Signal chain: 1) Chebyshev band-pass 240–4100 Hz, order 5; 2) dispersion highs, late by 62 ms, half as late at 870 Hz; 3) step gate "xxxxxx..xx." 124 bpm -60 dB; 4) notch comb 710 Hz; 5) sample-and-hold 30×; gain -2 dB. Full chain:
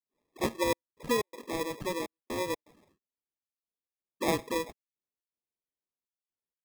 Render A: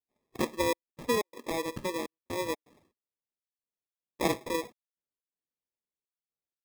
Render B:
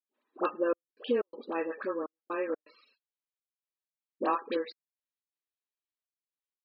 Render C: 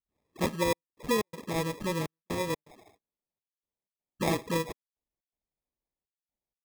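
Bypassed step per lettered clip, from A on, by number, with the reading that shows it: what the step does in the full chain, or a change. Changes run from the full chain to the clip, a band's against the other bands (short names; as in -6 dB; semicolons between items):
2, crest factor change +2.0 dB; 5, 4 kHz band -8.5 dB; 1, 125 Hz band +7.5 dB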